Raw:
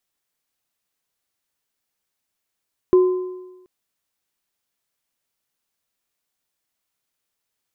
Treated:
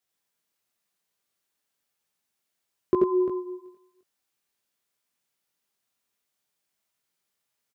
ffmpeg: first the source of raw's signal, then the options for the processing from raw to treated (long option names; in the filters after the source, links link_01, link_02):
-f lavfi -i "aevalsrc='0.398*pow(10,-3*t/1.07)*sin(2*PI*367*t)+0.0501*pow(10,-3*t/1.05)*sin(2*PI*1030*t)':duration=0.73:sample_rate=44100"
-af "highpass=67,flanger=delay=17.5:depth=6:speed=1,aecho=1:1:85|90|348:0.596|0.501|0.299"